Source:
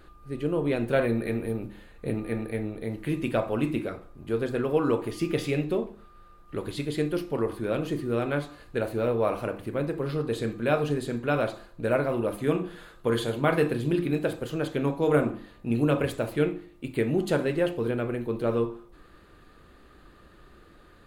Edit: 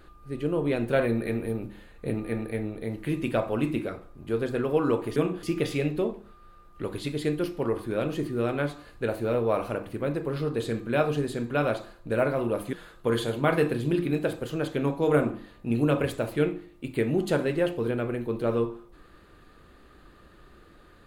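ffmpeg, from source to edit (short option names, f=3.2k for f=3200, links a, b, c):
-filter_complex "[0:a]asplit=4[a][b][c][d];[a]atrim=end=5.162[e];[b]atrim=start=12.458:end=12.732[f];[c]atrim=start=5.158:end=12.462[g];[d]atrim=start=12.728[h];[e][f]acrossfade=d=0.004:c1=hsin:c2=hsin[i];[i][g]acrossfade=d=0.004:c1=hsin:c2=hsin[j];[j][h]acrossfade=d=0.004:c1=hsin:c2=hsin"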